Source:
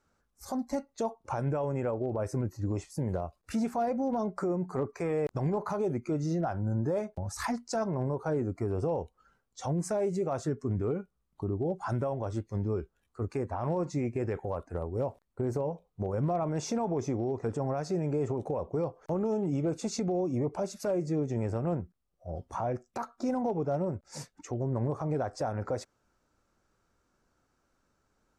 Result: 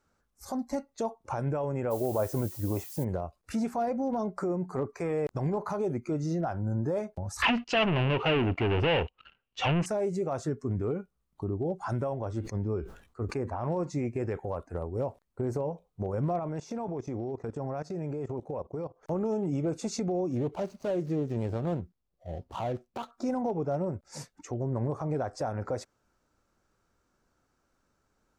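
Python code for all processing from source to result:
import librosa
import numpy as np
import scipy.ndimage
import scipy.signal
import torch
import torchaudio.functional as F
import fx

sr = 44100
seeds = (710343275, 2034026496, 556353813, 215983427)

y = fx.peak_eq(x, sr, hz=750.0, db=6.0, octaves=1.5, at=(1.9, 3.03), fade=0.02)
y = fx.dmg_noise_colour(y, sr, seeds[0], colour='violet', level_db=-45.0, at=(1.9, 3.03), fade=0.02)
y = fx.chain(y, sr, fx.leveller(passes=3),
    fx.lowpass_res(hz=2800.0, q=9.3), at=(7.42, 9.86))
y = fx.chain(y, sr, fx.high_shelf(hz=4700.0, db=-7.0),
    fx.sustainer(db_per_s=110.0), at=(12.19, 13.72))
y = fx.chain(y, sr, fx.peak_eq(hz=9500.0, db=-4.0, octaves=1.1),
    fx.level_steps(step_db=17), at=(16.39, 19.03))
y = fx.chain(y, sr, fx.median_filter(points=25),
    fx.peak_eq(hz=4800.0, db=4.5, octaves=0.85), at=(20.31, 23.11))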